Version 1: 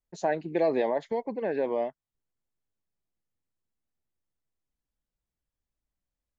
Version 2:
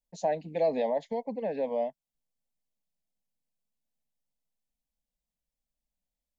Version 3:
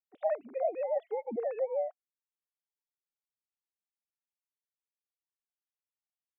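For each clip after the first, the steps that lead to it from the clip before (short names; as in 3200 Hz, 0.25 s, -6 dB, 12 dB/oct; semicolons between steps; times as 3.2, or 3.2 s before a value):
fixed phaser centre 360 Hz, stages 6
sine-wave speech; vocal rider 0.5 s; gain -2.5 dB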